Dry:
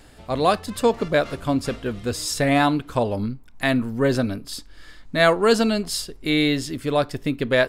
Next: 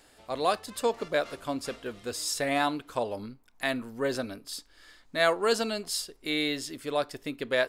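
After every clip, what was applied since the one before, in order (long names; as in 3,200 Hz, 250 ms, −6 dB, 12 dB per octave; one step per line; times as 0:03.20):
bass and treble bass −12 dB, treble +3 dB
level −7 dB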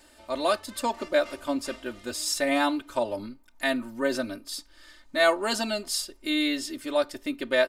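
comb filter 3.3 ms, depth 90%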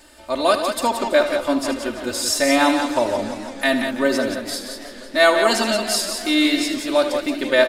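loudspeakers that aren't time-aligned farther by 26 metres −11 dB, 61 metres −7 dB
feedback echo with a swinging delay time 165 ms, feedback 79%, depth 201 cents, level −15 dB
level +7 dB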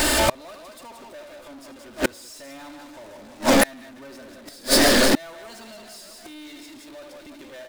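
power curve on the samples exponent 0.35
gate with flip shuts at −8 dBFS, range −32 dB
level −1 dB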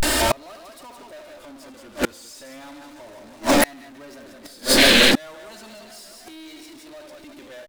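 sound drawn into the spectrogram noise, 0:04.79–0:05.12, 1,600–4,500 Hz −16 dBFS
pitch vibrato 0.34 Hz 89 cents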